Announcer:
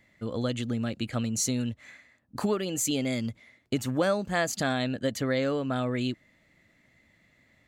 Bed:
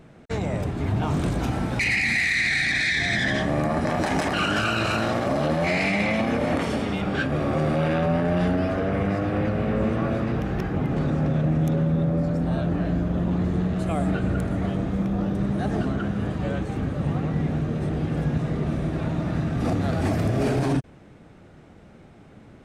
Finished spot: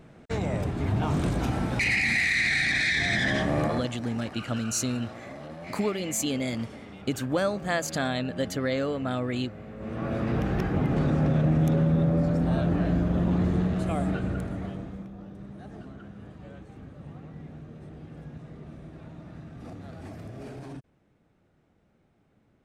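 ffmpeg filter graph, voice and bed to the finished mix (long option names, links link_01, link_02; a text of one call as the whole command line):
ffmpeg -i stem1.wav -i stem2.wav -filter_complex "[0:a]adelay=3350,volume=-0.5dB[link_01];[1:a]volume=15.5dB,afade=type=out:start_time=3.65:duration=0.25:silence=0.158489,afade=type=in:start_time=9.78:duration=0.63:silence=0.133352,afade=type=out:start_time=13.47:duration=1.65:silence=0.133352[link_02];[link_01][link_02]amix=inputs=2:normalize=0" out.wav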